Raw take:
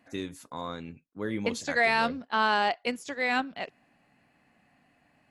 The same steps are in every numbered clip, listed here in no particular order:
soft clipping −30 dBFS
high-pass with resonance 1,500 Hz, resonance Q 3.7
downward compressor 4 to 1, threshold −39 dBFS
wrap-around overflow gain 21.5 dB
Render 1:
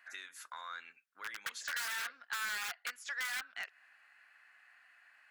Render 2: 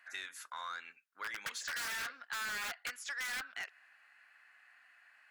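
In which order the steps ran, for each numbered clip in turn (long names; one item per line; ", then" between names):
wrap-around overflow, then downward compressor, then high-pass with resonance, then soft clipping
wrap-around overflow, then high-pass with resonance, then soft clipping, then downward compressor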